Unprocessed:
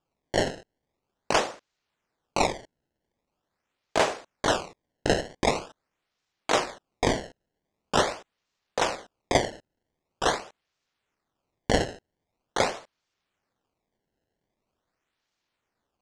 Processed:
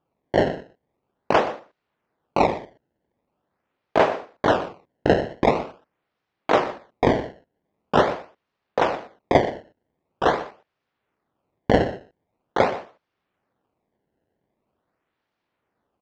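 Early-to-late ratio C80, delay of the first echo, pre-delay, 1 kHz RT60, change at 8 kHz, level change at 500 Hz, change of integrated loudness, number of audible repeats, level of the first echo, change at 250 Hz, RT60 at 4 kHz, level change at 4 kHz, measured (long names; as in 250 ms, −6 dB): no reverb audible, 122 ms, no reverb audible, no reverb audible, below −10 dB, +6.5 dB, +5.0 dB, 1, −15.5 dB, +7.0 dB, no reverb audible, −3.5 dB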